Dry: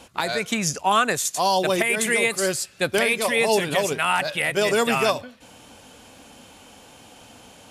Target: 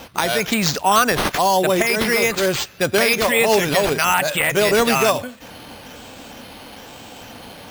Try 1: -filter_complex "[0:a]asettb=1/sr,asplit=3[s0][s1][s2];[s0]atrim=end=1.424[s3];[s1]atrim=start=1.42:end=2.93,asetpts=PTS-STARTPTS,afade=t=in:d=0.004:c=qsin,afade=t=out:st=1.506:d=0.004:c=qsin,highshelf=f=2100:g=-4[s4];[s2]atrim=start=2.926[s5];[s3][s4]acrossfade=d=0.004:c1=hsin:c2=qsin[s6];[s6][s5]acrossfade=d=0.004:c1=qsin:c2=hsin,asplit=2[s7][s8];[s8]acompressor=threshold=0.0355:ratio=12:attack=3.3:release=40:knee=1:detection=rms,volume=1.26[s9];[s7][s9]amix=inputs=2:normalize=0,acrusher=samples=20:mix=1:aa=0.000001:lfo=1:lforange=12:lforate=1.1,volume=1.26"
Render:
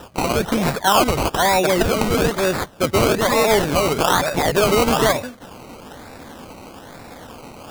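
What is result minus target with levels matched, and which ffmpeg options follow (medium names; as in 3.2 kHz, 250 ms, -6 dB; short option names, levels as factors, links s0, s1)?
decimation with a swept rate: distortion +11 dB
-filter_complex "[0:a]asettb=1/sr,asplit=3[s0][s1][s2];[s0]atrim=end=1.424[s3];[s1]atrim=start=1.42:end=2.93,asetpts=PTS-STARTPTS,afade=t=in:d=0.004:c=qsin,afade=t=out:st=1.506:d=0.004:c=qsin,highshelf=f=2100:g=-4[s4];[s2]atrim=start=2.926[s5];[s3][s4]acrossfade=d=0.004:c1=hsin:c2=qsin[s6];[s6][s5]acrossfade=d=0.004:c1=qsin:c2=hsin,asplit=2[s7][s8];[s8]acompressor=threshold=0.0355:ratio=12:attack=3.3:release=40:knee=1:detection=rms,volume=1.26[s9];[s7][s9]amix=inputs=2:normalize=0,acrusher=samples=5:mix=1:aa=0.000001:lfo=1:lforange=3:lforate=1.1,volume=1.26"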